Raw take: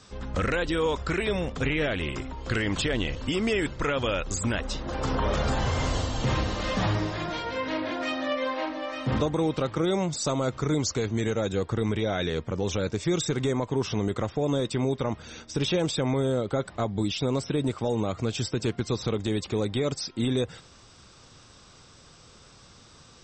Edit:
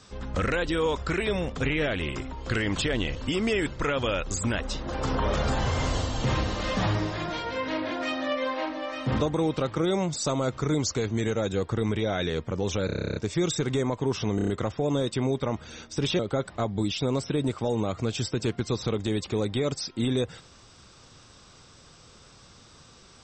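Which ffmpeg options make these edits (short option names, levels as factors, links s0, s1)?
-filter_complex "[0:a]asplit=16[s0][s1][s2][s3][s4][s5][s6][s7][s8][s9][s10][s11][s12][s13][s14][s15];[s0]atrim=end=12.892[s16];[s1]atrim=start=12.858:end=12.892[s17];[s2]atrim=start=12.858:end=12.892[s18];[s3]atrim=start=12.858:end=12.892[s19];[s4]atrim=start=12.858:end=12.892[s20];[s5]atrim=start=12.858:end=12.892[s21];[s6]atrim=start=12.858:end=12.892[s22];[s7]atrim=start=12.858:end=12.892[s23];[s8]atrim=start=12.858:end=12.892[s24];[s9]atrim=start=12.858:end=12.892[s25];[s10]atrim=start=12.858:end=14.092[s26];[s11]atrim=start=14.058:end=14.092[s27];[s12]atrim=start=14.058:end=14.092[s28];[s13]atrim=start=14.058:end=14.092[s29];[s14]atrim=start=14.058:end=15.772[s30];[s15]atrim=start=16.388[s31];[s16][s17]acrossfade=d=0.004:c1=hsin:c2=hsin[s32];[s32][s18]acrossfade=d=0.004:c1=hsin:c2=hsin[s33];[s33][s19]acrossfade=d=0.004:c1=hsin:c2=hsin[s34];[s34][s20]acrossfade=d=0.004:c1=hsin:c2=hsin[s35];[s35][s21]acrossfade=d=0.004:c1=hsin:c2=hsin[s36];[s36][s22]acrossfade=d=0.004:c1=hsin:c2=hsin[s37];[s37][s23]acrossfade=d=0.004:c1=hsin:c2=hsin[s38];[s38][s24]acrossfade=d=0.004:c1=hsin:c2=hsin[s39];[s39][s25]acrossfade=d=0.004:c1=hsin:c2=hsin[s40];[s40][s26]acrossfade=d=0.004:c1=hsin:c2=hsin[s41];[s41][s27]acrossfade=d=0.004:c1=hsin:c2=hsin[s42];[s42][s28]acrossfade=d=0.004:c1=hsin:c2=hsin[s43];[s43][s29]acrossfade=d=0.004:c1=hsin:c2=hsin[s44];[s44][s30]acrossfade=d=0.004:c1=hsin:c2=hsin[s45];[s45][s31]acrossfade=d=0.004:c1=hsin:c2=hsin"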